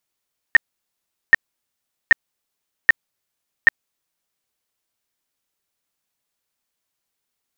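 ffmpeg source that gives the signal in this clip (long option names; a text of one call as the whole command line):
ffmpeg -f lavfi -i "aevalsrc='0.596*sin(2*PI*1840*mod(t,0.78))*lt(mod(t,0.78),29/1840)':duration=3.9:sample_rate=44100" out.wav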